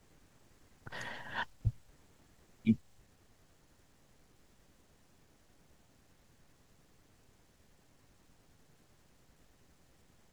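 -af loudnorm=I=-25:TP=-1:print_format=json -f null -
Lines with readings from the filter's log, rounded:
"input_i" : "-37.8",
"input_tp" : "-15.9",
"input_lra" : "1.8",
"input_thresh" : "-56.9",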